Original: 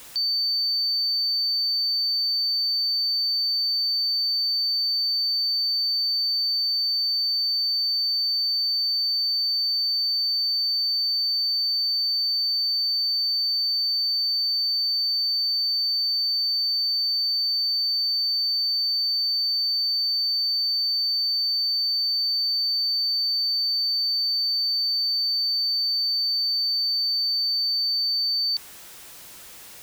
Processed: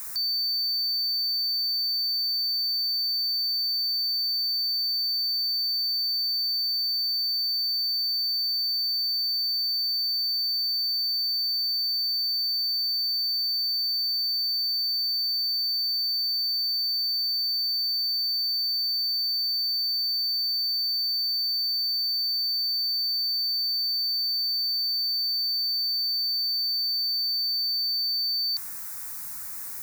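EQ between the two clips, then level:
high-shelf EQ 8,900 Hz +9 dB
mains-hum notches 60/120/180/240/300/360 Hz
phaser with its sweep stopped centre 1,300 Hz, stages 4
+2.0 dB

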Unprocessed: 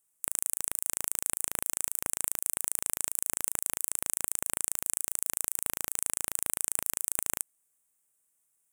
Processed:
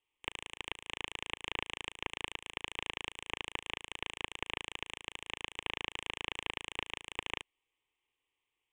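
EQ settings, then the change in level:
transistor ladder low-pass 3,600 Hz, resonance 60%
phaser with its sweep stopped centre 950 Hz, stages 8
notch filter 1,700 Hz, Q 8.9
+14.0 dB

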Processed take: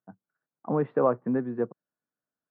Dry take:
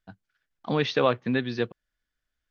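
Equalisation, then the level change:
high-pass filter 140 Hz 24 dB per octave
low-pass filter 1,200 Hz 24 dB per octave
high-frequency loss of the air 52 metres
0.0 dB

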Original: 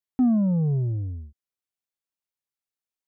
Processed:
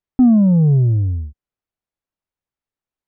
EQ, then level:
low-pass filter 1,200 Hz 6 dB per octave
low-shelf EQ 84 Hz +9.5 dB
+8.0 dB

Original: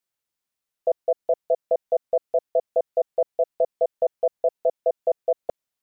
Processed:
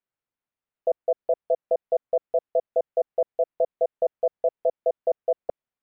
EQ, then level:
high-frequency loss of the air 450 metres
0.0 dB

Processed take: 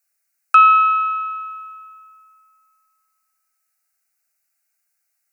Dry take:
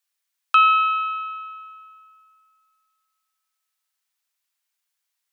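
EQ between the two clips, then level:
phaser with its sweep stopped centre 680 Hz, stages 8
notch filter 1,800 Hz, Q 10
+8.0 dB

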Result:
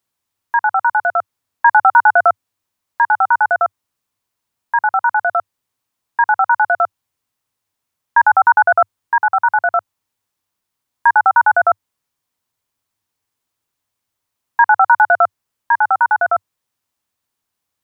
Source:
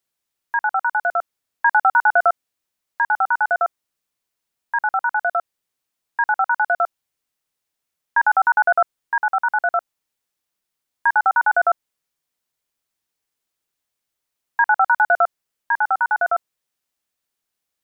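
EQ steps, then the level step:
graphic EQ with 15 bands 100 Hz +12 dB, 250 Hz +4 dB, 1,000 Hz +6 dB
+2.0 dB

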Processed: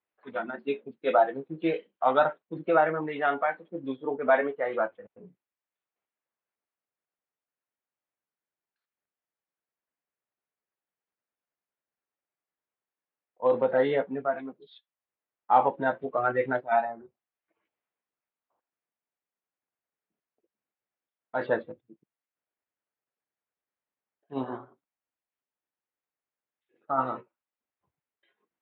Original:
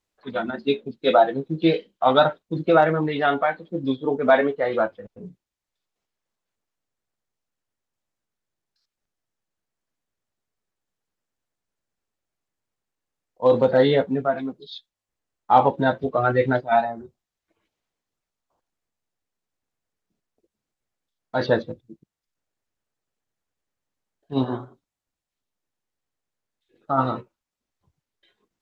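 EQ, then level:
high-pass filter 530 Hz 6 dB per octave
low-pass filter 2,800 Hz 24 dB per octave
high-frequency loss of the air 130 metres
−3.0 dB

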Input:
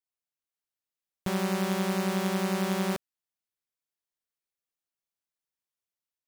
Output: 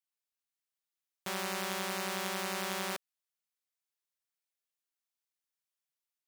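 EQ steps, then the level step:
high-pass filter 1,100 Hz 6 dB per octave
0.0 dB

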